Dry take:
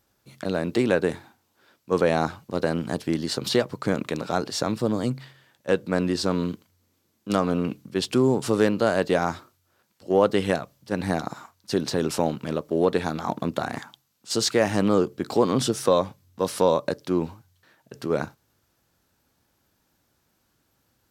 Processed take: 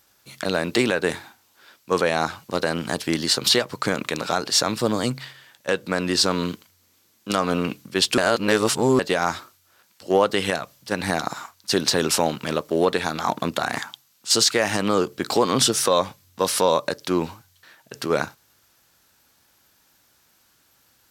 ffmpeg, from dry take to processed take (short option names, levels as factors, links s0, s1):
-filter_complex "[0:a]asplit=3[s0][s1][s2];[s0]atrim=end=8.182[s3];[s1]atrim=start=8.178:end=8.992,asetpts=PTS-STARTPTS,areverse[s4];[s2]atrim=start=8.988[s5];[s3][s4]acrossfade=d=0.004:c1=hsin:c2=hsin[s6];[s6][s5]acrossfade=d=0.004:c1=hsin:c2=hsin,tiltshelf=f=770:g=-6,alimiter=limit=0.251:level=0:latency=1:release=184,volume=1.88"